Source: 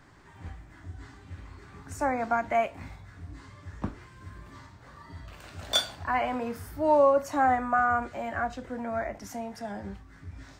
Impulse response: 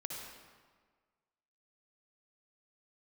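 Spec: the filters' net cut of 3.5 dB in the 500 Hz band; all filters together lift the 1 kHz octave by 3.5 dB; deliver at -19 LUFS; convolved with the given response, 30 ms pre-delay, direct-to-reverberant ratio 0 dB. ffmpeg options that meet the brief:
-filter_complex "[0:a]equalizer=f=500:t=o:g=-8,equalizer=f=1000:t=o:g=8,asplit=2[s0][s1];[1:a]atrim=start_sample=2205,adelay=30[s2];[s1][s2]afir=irnorm=-1:irlink=0,volume=1.06[s3];[s0][s3]amix=inputs=2:normalize=0,volume=1.68"

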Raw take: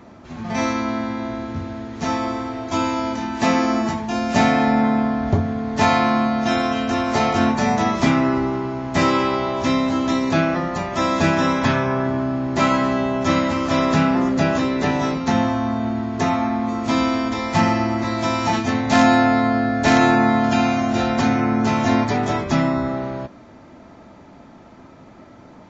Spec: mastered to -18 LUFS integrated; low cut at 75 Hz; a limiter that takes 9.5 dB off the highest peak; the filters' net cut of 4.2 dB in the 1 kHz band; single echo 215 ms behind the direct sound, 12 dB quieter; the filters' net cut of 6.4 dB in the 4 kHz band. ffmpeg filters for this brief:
-af "highpass=75,equalizer=f=1000:t=o:g=-5.5,equalizer=f=4000:t=o:g=-8,alimiter=limit=0.178:level=0:latency=1,aecho=1:1:215:0.251,volume=2.11"

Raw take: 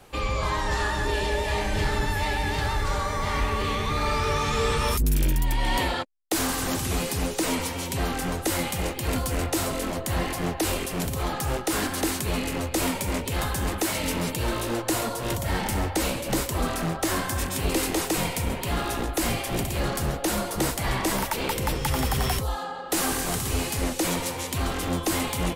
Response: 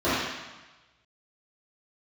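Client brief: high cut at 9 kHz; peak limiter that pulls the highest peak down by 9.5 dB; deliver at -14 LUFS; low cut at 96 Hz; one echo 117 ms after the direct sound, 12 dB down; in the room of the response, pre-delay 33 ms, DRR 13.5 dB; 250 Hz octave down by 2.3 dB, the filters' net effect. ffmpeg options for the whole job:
-filter_complex "[0:a]highpass=96,lowpass=9000,equalizer=f=250:t=o:g=-3,alimiter=level_in=1.06:limit=0.0631:level=0:latency=1,volume=0.944,aecho=1:1:117:0.251,asplit=2[s0][s1];[1:a]atrim=start_sample=2205,adelay=33[s2];[s1][s2]afir=irnorm=-1:irlink=0,volume=0.0266[s3];[s0][s3]amix=inputs=2:normalize=0,volume=8.41"

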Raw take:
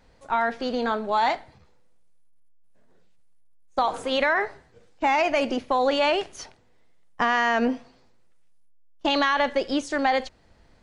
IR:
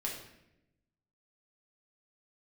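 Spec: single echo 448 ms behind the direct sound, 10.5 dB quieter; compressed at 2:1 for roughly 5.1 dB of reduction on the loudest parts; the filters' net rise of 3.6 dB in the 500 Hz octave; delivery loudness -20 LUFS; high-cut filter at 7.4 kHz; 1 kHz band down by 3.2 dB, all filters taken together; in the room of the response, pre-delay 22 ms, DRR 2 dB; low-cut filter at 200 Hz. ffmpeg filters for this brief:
-filter_complex "[0:a]highpass=200,lowpass=7400,equalizer=f=500:t=o:g=6.5,equalizer=f=1000:t=o:g=-7,acompressor=threshold=0.0562:ratio=2,aecho=1:1:448:0.299,asplit=2[s0][s1];[1:a]atrim=start_sample=2205,adelay=22[s2];[s1][s2]afir=irnorm=-1:irlink=0,volume=0.631[s3];[s0][s3]amix=inputs=2:normalize=0,volume=2"

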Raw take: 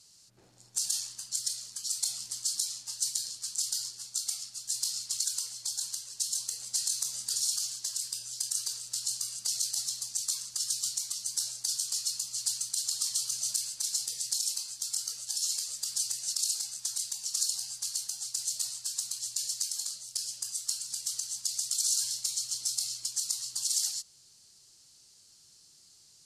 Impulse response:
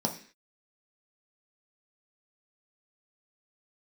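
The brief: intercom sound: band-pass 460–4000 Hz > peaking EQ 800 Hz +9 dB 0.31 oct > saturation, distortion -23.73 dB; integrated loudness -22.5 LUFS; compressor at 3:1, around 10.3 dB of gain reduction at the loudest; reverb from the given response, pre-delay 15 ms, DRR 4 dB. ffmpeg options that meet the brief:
-filter_complex "[0:a]acompressor=threshold=0.00891:ratio=3,asplit=2[s0][s1];[1:a]atrim=start_sample=2205,adelay=15[s2];[s1][s2]afir=irnorm=-1:irlink=0,volume=0.282[s3];[s0][s3]amix=inputs=2:normalize=0,highpass=460,lowpass=4000,equalizer=f=800:t=o:w=0.31:g=9,asoftclip=threshold=0.015,volume=17.8"

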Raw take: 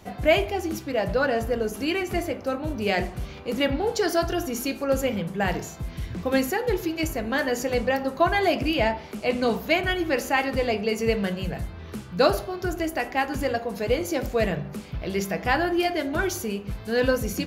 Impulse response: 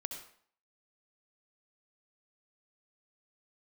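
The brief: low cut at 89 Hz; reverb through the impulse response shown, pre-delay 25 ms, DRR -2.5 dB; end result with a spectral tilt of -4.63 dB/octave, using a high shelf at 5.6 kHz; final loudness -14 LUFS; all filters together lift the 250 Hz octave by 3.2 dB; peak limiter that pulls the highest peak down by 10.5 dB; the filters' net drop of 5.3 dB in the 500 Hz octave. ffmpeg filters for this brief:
-filter_complex "[0:a]highpass=89,equalizer=f=250:t=o:g=7,equalizer=f=500:t=o:g=-9,highshelf=f=5600:g=5,alimiter=limit=0.112:level=0:latency=1,asplit=2[s0][s1];[1:a]atrim=start_sample=2205,adelay=25[s2];[s1][s2]afir=irnorm=-1:irlink=0,volume=1.5[s3];[s0][s3]amix=inputs=2:normalize=0,volume=3.16"

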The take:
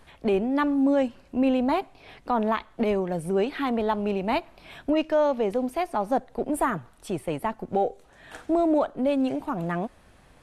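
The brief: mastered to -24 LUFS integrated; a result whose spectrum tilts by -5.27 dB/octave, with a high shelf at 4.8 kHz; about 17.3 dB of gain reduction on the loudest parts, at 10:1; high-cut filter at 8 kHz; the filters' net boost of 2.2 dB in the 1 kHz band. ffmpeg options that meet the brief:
-af "lowpass=8000,equalizer=f=1000:t=o:g=3,highshelf=f=4800:g=-3.5,acompressor=threshold=0.0158:ratio=10,volume=6.68"

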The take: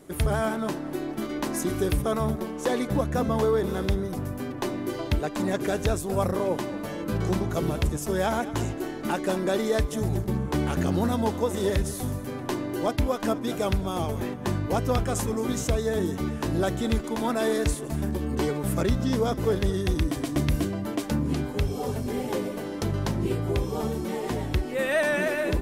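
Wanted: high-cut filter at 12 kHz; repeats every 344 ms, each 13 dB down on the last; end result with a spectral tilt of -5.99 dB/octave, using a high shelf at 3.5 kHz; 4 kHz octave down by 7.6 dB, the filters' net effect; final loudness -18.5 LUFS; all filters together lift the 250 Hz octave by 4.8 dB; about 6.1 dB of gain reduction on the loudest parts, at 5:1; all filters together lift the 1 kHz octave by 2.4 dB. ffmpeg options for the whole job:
-af "lowpass=12000,equalizer=f=250:t=o:g=6,equalizer=f=1000:t=o:g=3.5,highshelf=f=3500:g=-4.5,equalizer=f=4000:t=o:g=-7,acompressor=threshold=0.0631:ratio=5,aecho=1:1:344|688|1032:0.224|0.0493|0.0108,volume=3.16"

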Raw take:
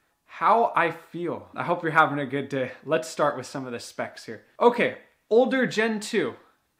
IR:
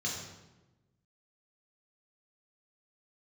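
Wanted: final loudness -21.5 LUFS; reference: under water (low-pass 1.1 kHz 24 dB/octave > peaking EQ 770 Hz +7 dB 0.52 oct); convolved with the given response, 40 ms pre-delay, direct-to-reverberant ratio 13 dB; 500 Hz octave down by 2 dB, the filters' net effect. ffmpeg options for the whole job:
-filter_complex "[0:a]equalizer=f=500:t=o:g=-4.5,asplit=2[s0][s1];[1:a]atrim=start_sample=2205,adelay=40[s2];[s1][s2]afir=irnorm=-1:irlink=0,volume=0.141[s3];[s0][s3]amix=inputs=2:normalize=0,lowpass=f=1100:w=0.5412,lowpass=f=1100:w=1.3066,equalizer=f=770:t=o:w=0.52:g=7,volume=1.68"

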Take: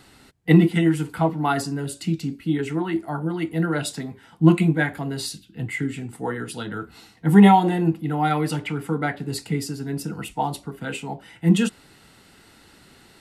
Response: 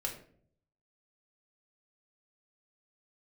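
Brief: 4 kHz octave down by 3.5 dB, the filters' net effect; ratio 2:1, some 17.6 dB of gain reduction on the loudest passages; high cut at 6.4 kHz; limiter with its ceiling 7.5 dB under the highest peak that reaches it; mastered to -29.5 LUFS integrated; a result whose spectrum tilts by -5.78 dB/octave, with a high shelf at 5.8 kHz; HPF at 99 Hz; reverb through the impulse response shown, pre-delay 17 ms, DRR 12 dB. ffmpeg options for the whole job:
-filter_complex "[0:a]highpass=99,lowpass=6400,equalizer=f=4000:t=o:g=-5.5,highshelf=f=5800:g=4,acompressor=threshold=0.00794:ratio=2,alimiter=level_in=1.5:limit=0.0631:level=0:latency=1,volume=0.668,asplit=2[s0][s1];[1:a]atrim=start_sample=2205,adelay=17[s2];[s1][s2]afir=irnorm=-1:irlink=0,volume=0.211[s3];[s0][s3]amix=inputs=2:normalize=0,volume=2.66"

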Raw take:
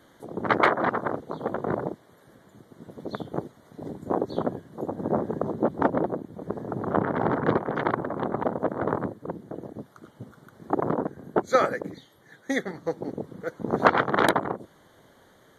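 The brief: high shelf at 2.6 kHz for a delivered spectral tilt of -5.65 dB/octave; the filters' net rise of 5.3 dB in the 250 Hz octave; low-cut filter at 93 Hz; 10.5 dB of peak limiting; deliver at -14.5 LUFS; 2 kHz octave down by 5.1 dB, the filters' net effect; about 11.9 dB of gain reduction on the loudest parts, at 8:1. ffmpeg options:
-af "highpass=93,equalizer=f=250:t=o:g=7,equalizer=f=2000:t=o:g=-8.5,highshelf=f=2600:g=3.5,acompressor=threshold=0.0447:ratio=8,volume=13.3,alimiter=limit=0.708:level=0:latency=1"

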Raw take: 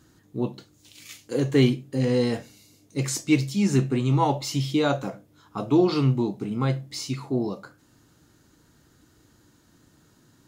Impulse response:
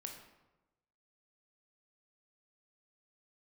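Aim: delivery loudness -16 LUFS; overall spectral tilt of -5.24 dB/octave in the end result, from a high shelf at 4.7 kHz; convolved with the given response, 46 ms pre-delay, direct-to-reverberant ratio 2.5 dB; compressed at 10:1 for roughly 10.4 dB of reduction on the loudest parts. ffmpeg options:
-filter_complex "[0:a]highshelf=f=4700:g=5.5,acompressor=threshold=0.0562:ratio=10,asplit=2[s0][s1];[1:a]atrim=start_sample=2205,adelay=46[s2];[s1][s2]afir=irnorm=-1:irlink=0,volume=1.12[s3];[s0][s3]amix=inputs=2:normalize=0,volume=4.47"

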